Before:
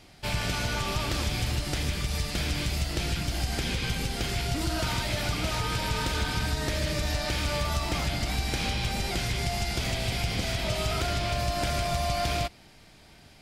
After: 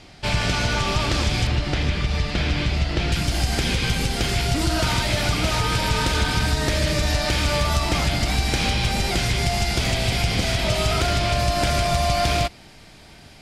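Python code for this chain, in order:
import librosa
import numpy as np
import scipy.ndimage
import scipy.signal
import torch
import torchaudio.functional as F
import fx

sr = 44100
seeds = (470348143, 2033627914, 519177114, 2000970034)

y = fx.lowpass(x, sr, hz=fx.steps((0.0, 7400.0), (1.47, 3800.0), (3.12, 12000.0)), slope=12)
y = y * librosa.db_to_amplitude(7.5)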